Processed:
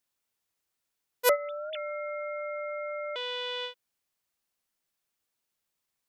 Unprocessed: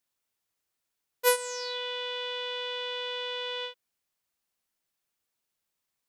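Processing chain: 1.29–3.16 s: formants replaced by sine waves

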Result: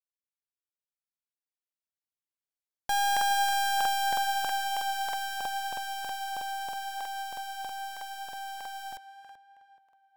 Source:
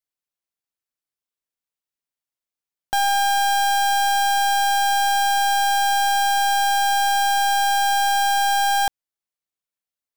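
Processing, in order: Doppler pass-by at 3.25 s, 7 m/s, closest 6.8 m; tape echo 429 ms, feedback 44%, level -9 dB, low-pass 2.2 kHz; crackling interface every 0.32 s, samples 2048, repeat, from 0.88 s; trim -7 dB

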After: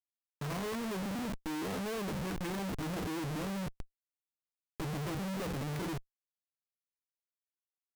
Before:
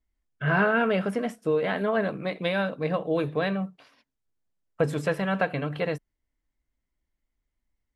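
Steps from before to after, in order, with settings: low-pass that closes with the level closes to 1.2 kHz, closed at -22 dBFS; formant shift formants -6 st; Schmitt trigger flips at -41.5 dBFS; trim -7 dB

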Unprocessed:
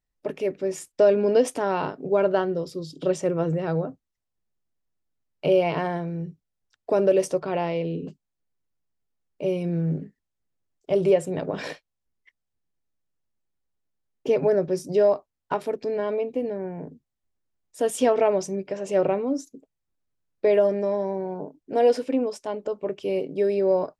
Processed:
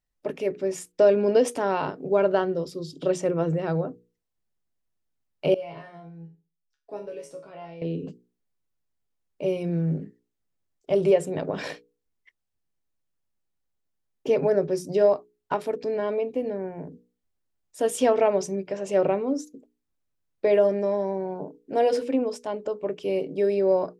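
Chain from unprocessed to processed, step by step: hum notches 60/120/180/240/300/360/420/480 Hz; 5.54–7.82 s: chord resonator C#3 minor, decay 0.32 s

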